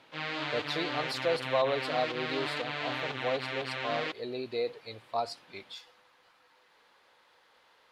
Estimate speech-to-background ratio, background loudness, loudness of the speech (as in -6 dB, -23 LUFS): 0.0 dB, -35.0 LUFS, -35.0 LUFS